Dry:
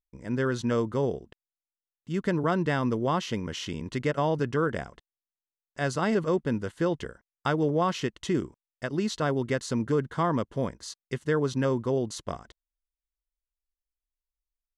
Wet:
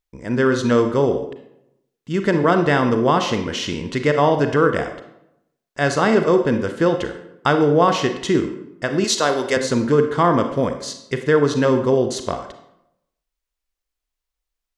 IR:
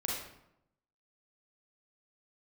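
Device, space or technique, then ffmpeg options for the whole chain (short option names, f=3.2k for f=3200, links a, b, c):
filtered reverb send: -filter_complex "[0:a]asplit=2[a][b];[b]highpass=230,lowpass=8.2k[c];[1:a]atrim=start_sample=2205[d];[c][d]afir=irnorm=-1:irlink=0,volume=-6dB[e];[a][e]amix=inputs=2:normalize=0,asettb=1/sr,asplit=3[f][g][h];[f]atrim=end=9.044[i];[g]atrim=start=9.04:end=9.57,asetpts=PTS-STARTPTS,afade=t=in:d=0.004:c=qsin,afade=t=out:st=0.526:d=0.004:c=qsin,bass=f=250:g=-14,treble=f=4k:g=11[j];[h]atrim=start=9.566[k];[i][j]acrossfade=d=0.004:c1=hsin:c2=qsin[l];[l][k]acrossfade=d=0.004:c1=qsin:c2=hsin,volume=7dB"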